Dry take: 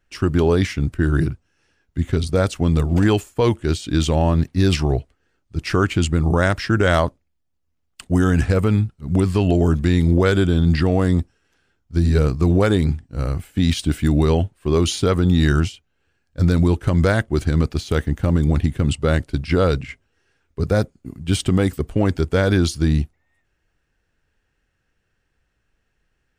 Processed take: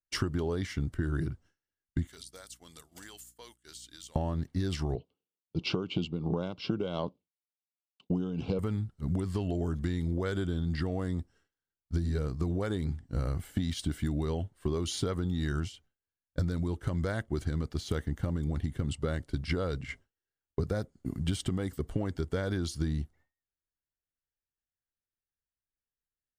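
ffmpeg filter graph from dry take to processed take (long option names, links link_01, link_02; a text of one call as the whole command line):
ffmpeg -i in.wav -filter_complex "[0:a]asettb=1/sr,asplit=3[link_01][link_02][link_03];[link_01]atrim=end=2.074[link_04];[link_02]atrim=start=2.07:end=4.16,asetpts=PTS-STARTPTS,afade=type=in:duration=0.004:curve=qsin,afade=type=out:start_time=2.086:duration=0.004:curve=qsin,aderivative,acompressor=threshold=-40dB:ratio=16:attack=3.2:release=140:knee=1:detection=peak,aeval=exprs='val(0)+0.00112*(sin(2*PI*60*n/s)+sin(2*PI*2*60*n/s)/2+sin(2*PI*3*60*n/s)/3+sin(2*PI*4*60*n/s)/4+sin(2*PI*5*60*n/s)/5)':channel_layout=same[link_05];[link_03]atrim=start=4.156[link_06];[link_04][link_05]acrossfade=duration=0.004:curve1=hsin:curve2=qsin[link_07];[link_07][link_06]acrossfade=duration=0.004:curve1=qsin:curve2=hsin,asettb=1/sr,asplit=3[link_08][link_09][link_10];[link_08]atrim=end=4.954[link_11];[link_09]atrim=start=4.95:end=8.59,asetpts=PTS-STARTPTS,afade=type=in:duration=0.004:curve=qsin,afade=type=out:start_time=3.636:duration=0.004:curve=qsin,highpass=170,equalizer=frequency=180:width_type=q:width=4:gain=7,equalizer=frequency=450:width_type=q:width=4:gain=4,equalizer=frequency=670:width_type=q:width=4:gain=-5,equalizer=frequency=1300:width_type=q:width=4:gain=-9,equalizer=frequency=2700:width_type=q:width=4:gain=5,lowpass=frequency=4400:width=0.5412,lowpass=frequency=4400:width=1.3066,tremolo=f=2.8:d=0.63,asuperstop=centerf=1800:order=4:qfactor=1.7[link_12];[link_10]atrim=start=8.586[link_13];[link_11][link_12]acrossfade=duration=0.004:curve1=hsin:curve2=qsin[link_14];[link_14][link_13]acrossfade=duration=0.004:curve1=qsin:curve2=hsin,agate=range=-33dB:threshold=-39dB:ratio=3:detection=peak,bandreject=frequency=2500:width=6.2,acompressor=threshold=-30dB:ratio=16,volume=2.5dB" out.wav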